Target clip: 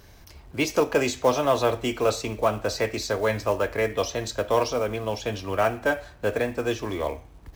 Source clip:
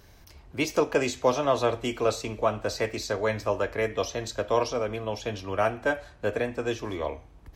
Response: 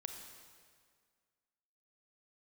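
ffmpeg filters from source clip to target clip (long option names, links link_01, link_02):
-filter_complex "[0:a]asplit=2[link_01][link_02];[link_02]asoftclip=type=tanh:threshold=-21.5dB,volume=-6.5dB[link_03];[link_01][link_03]amix=inputs=2:normalize=0,acrusher=bits=6:mode=log:mix=0:aa=0.000001"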